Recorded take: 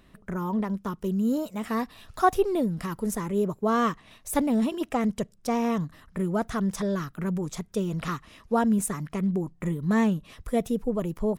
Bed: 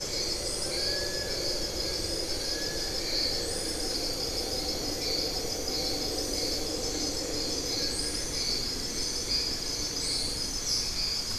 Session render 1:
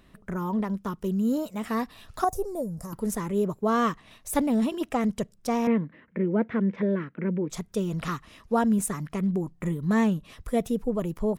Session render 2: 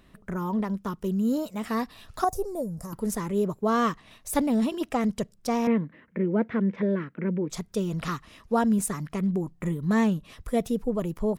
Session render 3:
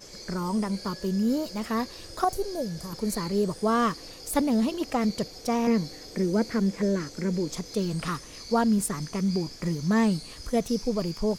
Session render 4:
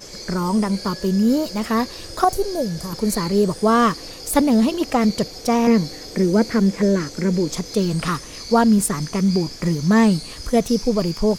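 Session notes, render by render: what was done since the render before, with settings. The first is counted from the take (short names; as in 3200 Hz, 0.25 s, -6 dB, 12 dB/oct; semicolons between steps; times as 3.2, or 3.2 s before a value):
2.24–2.93 EQ curve 130 Hz 0 dB, 230 Hz -9 dB, 370 Hz -9 dB, 550 Hz +1 dB, 3100 Hz -26 dB, 6300 Hz +2 dB; 5.67–7.5 speaker cabinet 170–2500 Hz, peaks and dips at 220 Hz +6 dB, 340 Hz +5 dB, 500 Hz +7 dB, 740 Hz -9 dB, 1200 Hz -9 dB, 2200 Hz +7 dB
dynamic EQ 4700 Hz, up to +4 dB, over -56 dBFS, Q 2.6
add bed -12.5 dB
gain +8 dB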